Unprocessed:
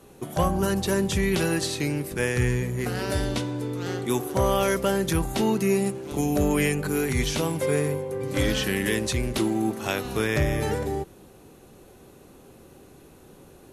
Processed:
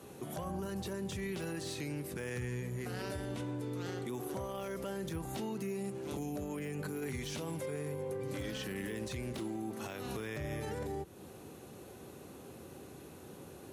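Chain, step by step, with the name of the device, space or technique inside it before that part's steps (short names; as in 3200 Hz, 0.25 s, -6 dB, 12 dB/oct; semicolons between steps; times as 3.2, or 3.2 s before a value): 3.14–3.61 bell 4700 Hz -7.5 dB 1.1 oct; podcast mastering chain (HPF 68 Hz 24 dB/oct; de-esser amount 65%; compressor 2:1, threshold -39 dBFS, peak gain reduction 11.5 dB; limiter -30.5 dBFS, peak gain reduction 9.5 dB; MP3 128 kbps 48000 Hz)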